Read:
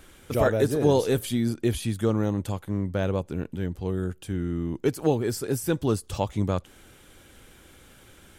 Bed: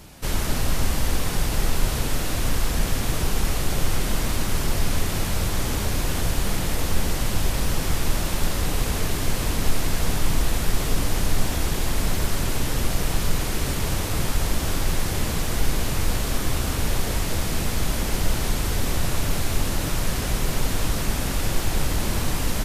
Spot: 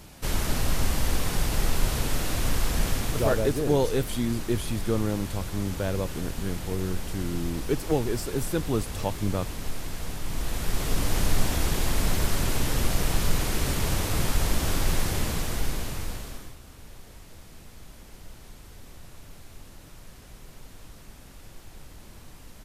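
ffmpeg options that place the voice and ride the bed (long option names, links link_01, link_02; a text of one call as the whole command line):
ffmpeg -i stem1.wav -i stem2.wav -filter_complex "[0:a]adelay=2850,volume=-2.5dB[link_01];[1:a]volume=7dB,afade=type=out:start_time=2.88:duration=0.67:silence=0.375837,afade=type=in:start_time=10.24:duration=0.97:silence=0.334965,afade=type=out:start_time=14.98:duration=1.58:silence=0.0841395[link_02];[link_01][link_02]amix=inputs=2:normalize=0" out.wav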